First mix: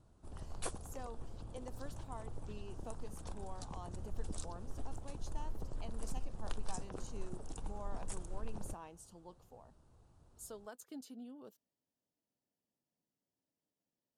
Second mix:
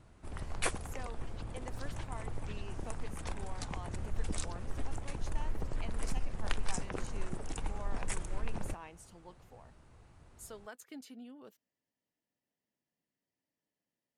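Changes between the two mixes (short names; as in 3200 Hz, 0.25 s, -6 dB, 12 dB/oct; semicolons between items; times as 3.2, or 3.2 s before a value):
background +6.0 dB; master: add bell 2100 Hz +13 dB 0.92 oct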